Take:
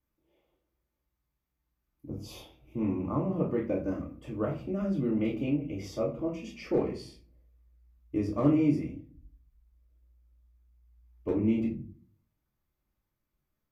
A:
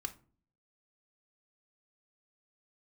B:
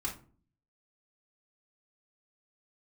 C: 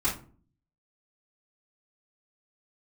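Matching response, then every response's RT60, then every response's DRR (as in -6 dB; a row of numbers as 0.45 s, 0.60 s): C; no single decay rate, 0.45 s, 0.45 s; 7.5 dB, -2.5 dB, -9.0 dB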